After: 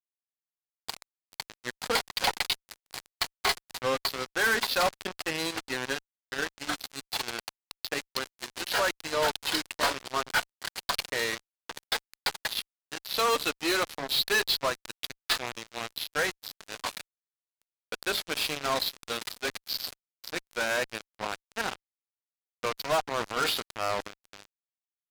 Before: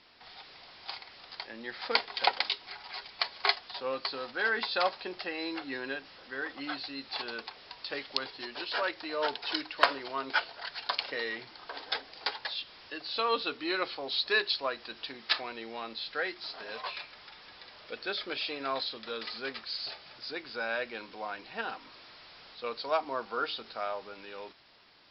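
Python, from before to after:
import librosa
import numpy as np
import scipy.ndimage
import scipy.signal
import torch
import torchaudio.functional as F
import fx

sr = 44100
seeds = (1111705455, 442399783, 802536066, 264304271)

y = fx.transient(x, sr, attack_db=-5, sustain_db=8, at=(23.07, 24.14))
y = fx.fuzz(y, sr, gain_db=35.0, gate_db=-35.0)
y = y * librosa.db_to_amplitude(-7.5)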